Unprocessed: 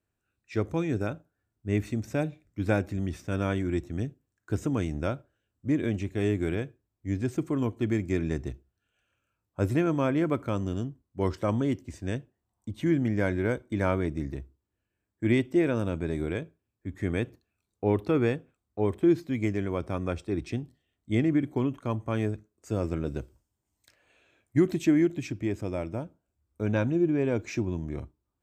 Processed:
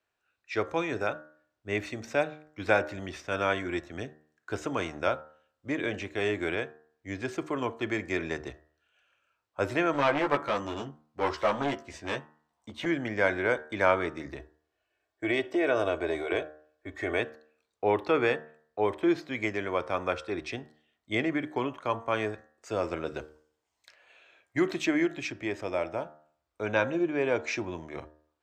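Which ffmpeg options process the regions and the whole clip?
ffmpeg -i in.wav -filter_complex "[0:a]asettb=1/sr,asplit=3[link_01][link_02][link_03];[link_01]atrim=end=9.934[link_04];[link_02]atrim=start=9.93:end=12.86,asetpts=PTS-STARTPTS,afade=type=in:duration=0.004:curve=qsin,afade=type=out:start_time=2.926:duration=0.004:curve=qsin,asplit=2[link_05][link_06];[link_06]adelay=14,volume=-4dB[link_07];[link_05][link_07]amix=inputs=2:normalize=0,atrim=end_sample=129213,aeval=exprs='clip(val(0),-1,0.0531)':channel_layout=same[link_08];[link_03]atrim=start=12.856[link_09];[link_04][link_08]acrossfade=duration=0.004:curve1=hsin:curve2=qsin[link_10];[link_10][link_09]acrossfade=duration=0.004:curve1=qsin:curve2=hsin,asettb=1/sr,asplit=3[link_11][link_12][link_13];[link_11]atrim=end=14.394[link_14];[link_12]atrim=start=14.39:end=17.2,asetpts=PTS-STARTPTS,afade=type=in:duration=0.004:curve=qsin,afade=type=out:start_time=2.806:duration=0.004:curve=qsin,equalizer=frequency=590:width_type=o:width=0.32:gain=12,aecho=1:1:2.7:0.64,atrim=end_sample=123921,acompressor=threshold=-23dB:ratio=2.5:attack=3.2:release=140:knee=1:detection=peak[link_15];[link_13]atrim=start=17.196[link_16];[link_14][link_15]acrossfade=duration=0.004:curve1=hsin:curve2=qsin[link_17];[link_17][link_16]acrossfade=duration=0.004:curve1=qsin:curve2=hsin,acrossover=split=480 5800:gain=0.112 1 0.158[link_18][link_19][link_20];[link_18][link_19][link_20]amix=inputs=3:normalize=0,bandreject=frequency=76.38:width_type=h:width=4,bandreject=frequency=152.76:width_type=h:width=4,bandreject=frequency=229.14:width_type=h:width=4,bandreject=frequency=305.52:width_type=h:width=4,bandreject=frequency=381.9:width_type=h:width=4,bandreject=frequency=458.28:width_type=h:width=4,bandreject=frequency=534.66:width_type=h:width=4,bandreject=frequency=611.04:width_type=h:width=4,bandreject=frequency=687.42:width_type=h:width=4,bandreject=frequency=763.8:width_type=h:width=4,bandreject=frequency=840.18:width_type=h:width=4,bandreject=frequency=916.56:width_type=h:width=4,bandreject=frequency=992.94:width_type=h:width=4,bandreject=frequency=1069.32:width_type=h:width=4,bandreject=frequency=1145.7:width_type=h:width=4,bandreject=frequency=1222.08:width_type=h:width=4,bandreject=frequency=1298.46:width_type=h:width=4,bandreject=frequency=1374.84:width_type=h:width=4,bandreject=frequency=1451.22:width_type=h:width=4,bandreject=frequency=1527.6:width_type=h:width=4,bandreject=frequency=1603.98:width_type=h:width=4,bandreject=frequency=1680.36:width_type=h:width=4,bandreject=frequency=1756.74:width_type=h:width=4,bandreject=frequency=1833.12:width_type=h:width=4,bandreject=frequency=1909.5:width_type=h:width=4,volume=7.5dB" out.wav

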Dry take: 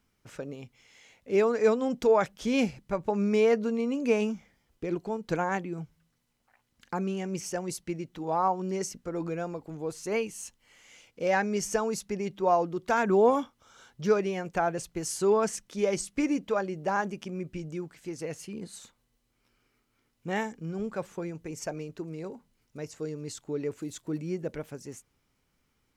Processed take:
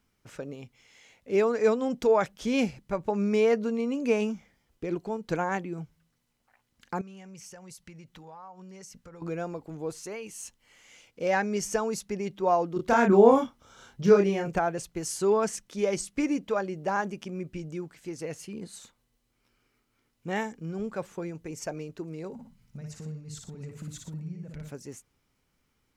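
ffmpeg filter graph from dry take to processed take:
ffmpeg -i in.wav -filter_complex "[0:a]asettb=1/sr,asplit=3[link_01][link_02][link_03];[link_01]atrim=end=7.014[link_04];[link_02]atrim=start=7.01:end=9.22,asetpts=PTS-STARTPTS,afade=type=in:duration=0.004:curve=qsin,afade=type=out:start_time=2.206:duration=0.004:curve=qsin,equalizer=frequency=330:width_type=o:width=0.8:gain=-11.5,acompressor=threshold=-44dB:ratio=5:attack=3.2:release=140:knee=1:detection=peak,bandreject=frequency=670:width=9.4[link_05];[link_03]atrim=start=9.216[link_06];[link_04][link_05]acrossfade=duration=0.004:curve1=hsin:curve2=qsin[link_07];[link_07][link_06]acrossfade=duration=0.004:curve1=qsin:curve2=hsin,asettb=1/sr,asplit=3[link_08][link_09][link_10];[link_08]atrim=end=9.994[link_11];[link_09]atrim=start=9.99:end=10.44,asetpts=PTS-STARTPTS,afade=type=in:duration=0.004:curve=qsin,afade=type=out:start_time=0.446:duration=0.004:curve=qsin,lowshelf=frequency=400:gain=-5.5,acompressor=threshold=-34dB:ratio=6:attack=3.2:release=140:knee=1:detection=peak[link_12];[link_10]atrim=start=10.436[link_13];[link_11][link_12]acrossfade=duration=0.004:curve1=hsin:curve2=qsin[link_14];[link_14][link_13]acrossfade=duration=0.004:curve1=qsin:curve2=hsin,asettb=1/sr,asplit=3[link_15][link_16][link_17];[link_15]atrim=end=12.764[link_18];[link_16]atrim=start=12.76:end=14.59,asetpts=PTS-STARTPTS,afade=type=in:duration=0.004:curve=qsin,afade=type=out:start_time=1.826:duration=0.004:curve=qsin,lowshelf=frequency=430:gain=6,asplit=2[link_19][link_20];[link_20]adelay=30,volume=-3dB[link_21];[link_19][link_21]amix=inputs=2:normalize=0,atrim=end_sample=80703[link_22];[link_17]atrim=start=14.586[link_23];[link_18][link_22]acrossfade=duration=0.004:curve1=hsin:curve2=qsin[link_24];[link_24][link_23]acrossfade=duration=0.004:curve1=qsin:curve2=hsin,asettb=1/sr,asplit=3[link_25][link_26][link_27];[link_25]atrim=end=22.334[link_28];[link_26]atrim=start=22.33:end=24.71,asetpts=PTS-STARTPTS,afade=type=in:duration=0.004:curve=qsin,afade=type=out:start_time=2.376:duration=0.004:curve=qsin,lowshelf=frequency=240:width_type=q:width=3:gain=9,acompressor=threshold=-37dB:ratio=16:attack=3.2:release=140:knee=1:detection=peak,aecho=1:1:58|118|718:0.631|0.266|0.178,atrim=end_sample=104958[link_29];[link_27]atrim=start=24.706[link_30];[link_28][link_29]acrossfade=duration=0.004:curve1=hsin:curve2=qsin[link_31];[link_31][link_30]acrossfade=duration=0.004:curve1=qsin:curve2=hsin" out.wav

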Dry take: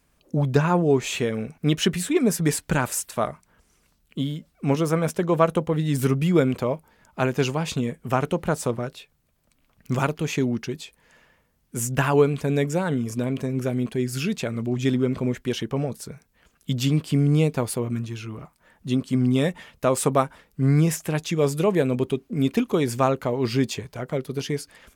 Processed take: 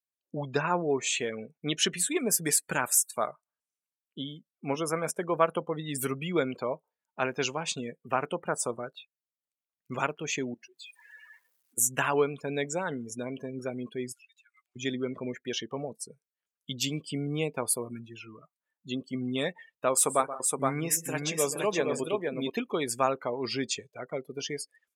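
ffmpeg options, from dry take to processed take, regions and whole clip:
ffmpeg -i in.wav -filter_complex "[0:a]asettb=1/sr,asplit=3[link_01][link_02][link_03];[link_01]atrim=end=10.544[link_04];[link_02]atrim=start=10.54:end=11.78,asetpts=PTS-STARTPTS,afade=type=in:duration=0.004:curve=qsin,afade=type=out:start_time=1.236:duration=0.004:curve=qsin,aeval=exprs='val(0)+0.5*0.0133*sgn(val(0))':channel_layout=same,acompressor=threshold=-37dB:ratio=12:attack=3.2:release=140:knee=1:detection=peak,lowshelf=frequency=430:gain=-8.5[link_05];[link_03]atrim=start=11.776[link_06];[link_04][link_05]acrossfade=duration=0.004:curve1=hsin:curve2=qsin[link_07];[link_07][link_06]acrossfade=duration=0.004:curve1=qsin:curve2=hsin,asettb=1/sr,asplit=3[link_08][link_09][link_10];[link_08]atrim=end=14.124[link_11];[link_09]atrim=start=14.12:end=14.76,asetpts=PTS-STARTPTS,afade=type=in:duration=0.004:curve=qsin,afade=type=out:start_time=0.636:duration=0.004:curve=qsin,highpass=frequency=1300:width=0.5412,highpass=frequency=1300:width=1.3066,acompressor=threshold=-44dB:ratio=8:attack=3.2:release=140:knee=1:detection=peak[link_12];[link_10]atrim=start=14.756[link_13];[link_11][link_12]acrossfade=duration=0.004:curve1=hsin:curve2=qsin[link_14];[link_14][link_13]acrossfade=duration=0.004:curve1=qsin:curve2=hsin,asettb=1/sr,asplit=3[link_15][link_16][link_17];[link_15]atrim=end=19.934[link_18];[link_16]atrim=start=19.93:end=22.5,asetpts=PTS-STARTPTS,afade=type=in:duration=0.004:curve=qsin,afade=type=out:start_time=2.566:duration=0.004:curve=qsin,lowshelf=frequency=120:gain=-6,aecho=1:1:129|172|469:0.224|0.126|0.668,atrim=end_sample=113337[link_19];[link_17]atrim=start=22.496[link_20];[link_18][link_19]acrossfade=duration=0.004:curve1=hsin:curve2=qsin[link_21];[link_21][link_20]acrossfade=duration=0.004:curve1=qsin:curve2=hsin,highpass=frequency=650:poles=1,afftdn=noise_reduction=32:noise_floor=-38,highshelf=frequency=6200:gain=10.5,volume=-2.5dB" out.wav

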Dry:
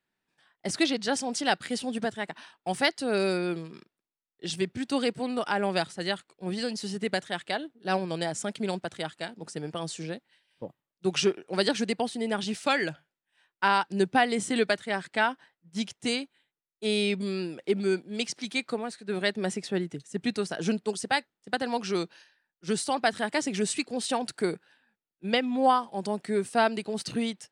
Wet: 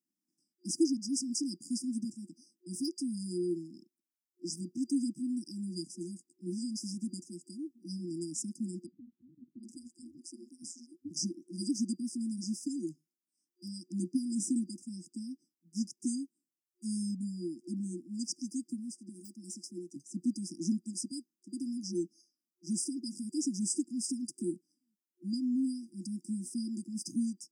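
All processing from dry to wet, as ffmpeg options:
ffmpeg -i in.wav -filter_complex "[0:a]asettb=1/sr,asplit=3[link_01][link_02][link_03];[link_01]atrim=end=8.864[link_04];[link_02]atrim=start=8.86:end=11.11,asetpts=PTS-STARTPTS,afade=type=in:duration=0.004:curve=qsin,afade=type=out:start_time=2.246:duration=0.004:curve=qsin,aeval=exprs='val(0)*sin(2*PI*86*n/s)':channel_layout=same,acrossover=split=260[link_05][link_06];[link_06]adelay=770[link_07];[link_05][link_07]amix=inputs=2:normalize=0,atrim=end_sample=99225[link_08];[link_03]atrim=start=11.106[link_09];[link_04][link_08]acrossfade=duration=0.004:curve1=hsin:curve2=qsin[link_10];[link_10][link_09]acrossfade=duration=0.004:curve1=qsin:curve2=hsin,asettb=1/sr,asplit=3[link_11][link_12][link_13];[link_11]atrim=end=19.094[link_14];[link_12]atrim=start=19.09:end=19.96,asetpts=PTS-STARTPTS,afade=type=in:duration=0.004:curve=qsin,afade=type=out:start_time=0.866:duration=0.004:curve=qsin,deesser=0.75,highpass=frequency=680:poles=1[link_15];[link_13]atrim=start=19.956[link_16];[link_14][link_15]acrossfade=duration=0.004:curve1=hsin:curve2=qsin[link_17];[link_17][link_16]acrossfade=duration=0.004:curve1=qsin:curve2=hsin,afftfilt=real='re*(1-between(b*sr/4096,360,4800))':imag='im*(1-between(b*sr/4096,360,4800))':win_size=4096:overlap=0.75,highpass=frequency=210:width=0.5412,highpass=frequency=210:width=1.3066,equalizer=frequency=2000:width=0.44:gain=-3.5" out.wav

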